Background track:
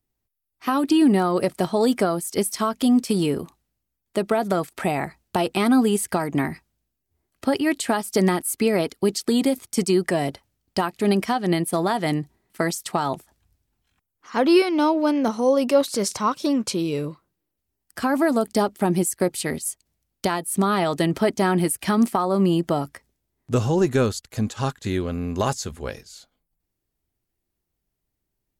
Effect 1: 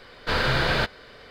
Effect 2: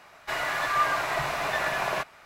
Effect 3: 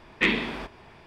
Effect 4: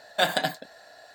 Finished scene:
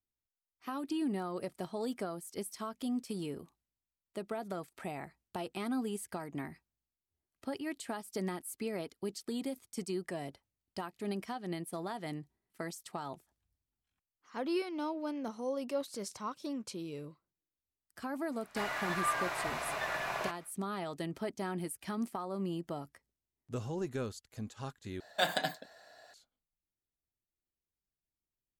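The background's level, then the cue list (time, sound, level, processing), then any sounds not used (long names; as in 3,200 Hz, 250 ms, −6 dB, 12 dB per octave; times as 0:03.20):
background track −17.5 dB
0:18.28: mix in 2 −8.5 dB, fades 0.10 s
0:25.00: overwrite with 4 −7.5 dB
not used: 1, 3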